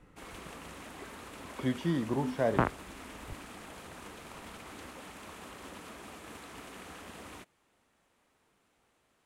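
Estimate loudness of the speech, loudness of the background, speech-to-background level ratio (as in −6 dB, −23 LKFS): −32.0 LKFS, −47.0 LKFS, 15.0 dB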